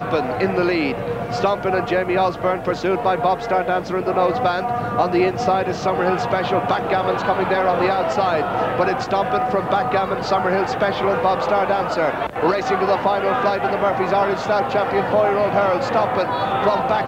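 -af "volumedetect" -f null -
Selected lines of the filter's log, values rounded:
mean_volume: -19.2 dB
max_volume: -4.6 dB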